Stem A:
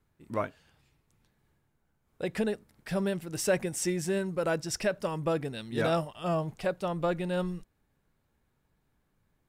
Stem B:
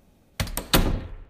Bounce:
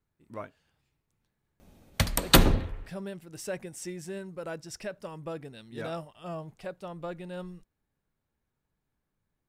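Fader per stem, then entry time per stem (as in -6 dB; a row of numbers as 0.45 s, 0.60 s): -8.5 dB, +1.5 dB; 0.00 s, 1.60 s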